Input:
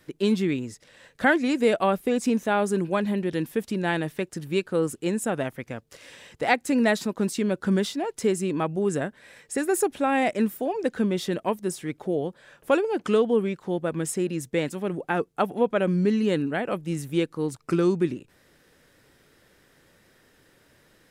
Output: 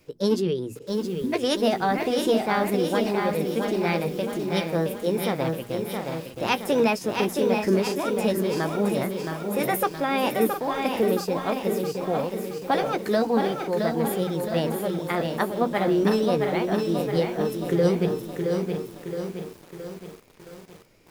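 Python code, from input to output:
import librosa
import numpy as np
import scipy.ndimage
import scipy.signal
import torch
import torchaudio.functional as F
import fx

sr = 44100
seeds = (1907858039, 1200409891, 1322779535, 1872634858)

p1 = fx.low_shelf(x, sr, hz=290.0, db=8.5)
p2 = fx.doubler(p1, sr, ms=17.0, db=-12)
p3 = fx.formant_shift(p2, sr, semitones=5)
p4 = fx.peak_eq(p3, sr, hz=5200.0, db=4.0, octaves=0.34)
p5 = fx.hum_notches(p4, sr, base_hz=60, count=4)
p6 = p5 + fx.echo_single(p5, sr, ms=712, db=-10.0, dry=0)
p7 = fx.spec_repair(p6, sr, seeds[0], start_s=0.85, length_s=0.46, low_hz=320.0, high_hz=9500.0, source='before')
p8 = fx.echo_crushed(p7, sr, ms=669, feedback_pct=55, bits=7, wet_db=-5.0)
y = p8 * 10.0 ** (-4.0 / 20.0)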